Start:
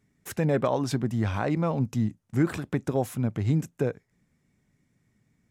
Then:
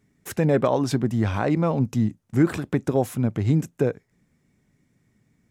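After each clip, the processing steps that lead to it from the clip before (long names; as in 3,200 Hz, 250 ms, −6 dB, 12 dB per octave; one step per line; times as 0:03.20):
parametric band 350 Hz +2.5 dB 1.5 octaves
level +3 dB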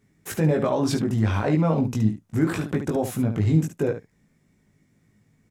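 brickwall limiter −15 dBFS, peak gain reduction 6.5 dB
on a send: ambience of single reflections 19 ms −3 dB, 72 ms −8.5 dB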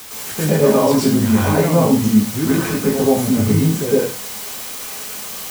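bit-depth reduction 6 bits, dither triangular
convolution reverb RT60 0.35 s, pre-delay 103 ms, DRR −6.5 dB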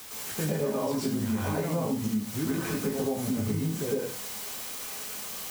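downward compressor, threshold −17 dBFS, peak gain reduction 9.5 dB
level −8.5 dB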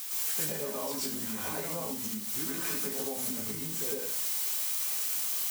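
high-pass filter 110 Hz
spectral tilt +3 dB per octave
level −4.5 dB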